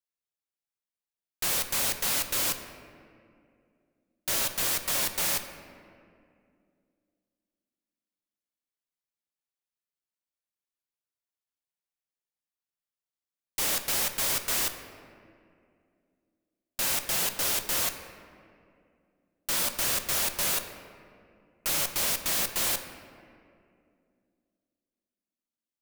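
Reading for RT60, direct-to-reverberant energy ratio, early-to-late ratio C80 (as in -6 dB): 2.4 s, 7.0 dB, 9.5 dB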